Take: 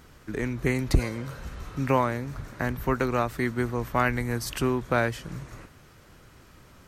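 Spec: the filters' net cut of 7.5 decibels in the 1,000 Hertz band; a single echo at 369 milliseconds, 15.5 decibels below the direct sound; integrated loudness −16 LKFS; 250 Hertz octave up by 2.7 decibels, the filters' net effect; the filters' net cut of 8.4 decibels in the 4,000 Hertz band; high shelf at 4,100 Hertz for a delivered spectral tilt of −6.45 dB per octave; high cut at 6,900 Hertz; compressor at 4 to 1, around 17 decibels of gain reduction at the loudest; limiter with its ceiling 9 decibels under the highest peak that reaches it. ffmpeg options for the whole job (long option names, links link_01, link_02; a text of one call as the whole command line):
ffmpeg -i in.wav -af "lowpass=6900,equalizer=frequency=250:width_type=o:gain=3.5,equalizer=frequency=1000:width_type=o:gain=-9,equalizer=frequency=4000:width_type=o:gain=-5,highshelf=frequency=4100:gain=-8.5,acompressor=threshold=-37dB:ratio=4,alimiter=level_in=7dB:limit=-24dB:level=0:latency=1,volume=-7dB,aecho=1:1:369:0.168,volume=26.5dB" out.wav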